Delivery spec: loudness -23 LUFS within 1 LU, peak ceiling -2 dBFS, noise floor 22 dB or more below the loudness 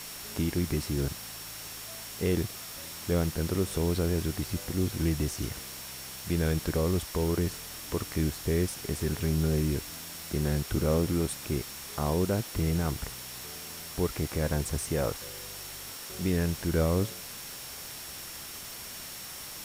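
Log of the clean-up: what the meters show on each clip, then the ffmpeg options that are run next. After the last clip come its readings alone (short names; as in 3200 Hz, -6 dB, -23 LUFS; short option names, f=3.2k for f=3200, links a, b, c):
steady tone 5500 Hz; tone level -49 dBFS; noise floor -42 dBFS; noise floor target -54 dBFS; loudness -31.5 LUFS; peak -15.0 dBFS; loudness target -23.0 LUFS
-> -af "bandreject=f=5.5k:w=30"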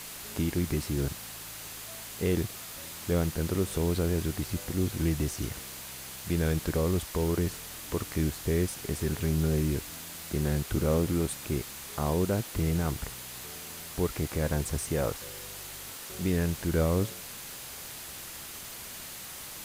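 steady tone none; noise floor -43 dBFS; noise floor target -54 dBFS
-> -af "afftdn=nr=11:nf=-43"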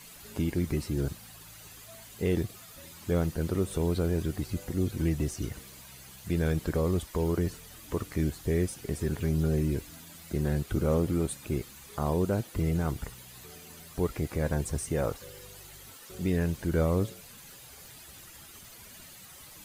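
noise floor -50 dBFS; noise floor target -53 dBFS
-> -af "afftdn=nr=6:nf=-50"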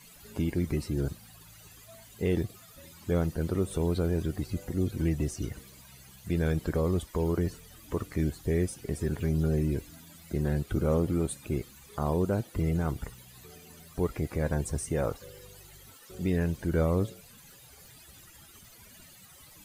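noise floor -54 dBFS; loudness -31.0 LUFS; peak -15.5 dBFS; loudness target -23.0 LUFS
-> -af "volume=8dB"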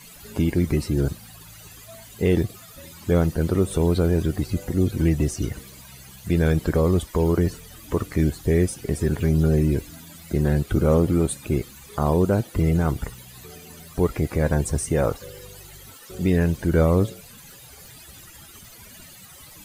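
loudness -23.0 LUFS; peak -7.5 dBFS; noise floor -46 dBFS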